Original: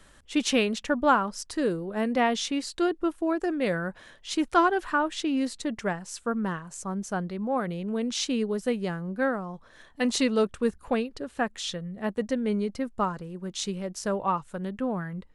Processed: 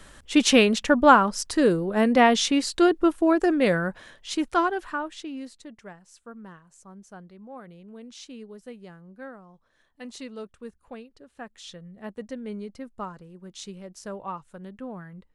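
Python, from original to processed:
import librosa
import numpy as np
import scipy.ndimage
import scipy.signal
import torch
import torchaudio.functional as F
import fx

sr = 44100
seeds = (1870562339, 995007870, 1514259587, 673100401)

y = fx.gain(x, sr, db=fx.line((3.53, 6.5), (4.8, -3.0), (5.81, -14.5), (11.26, -14.5), (11.83, -8.0)))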